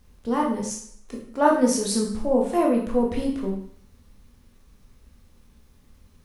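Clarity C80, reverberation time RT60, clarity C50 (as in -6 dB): 8.5 dB, 0.60 s, 5.0 dB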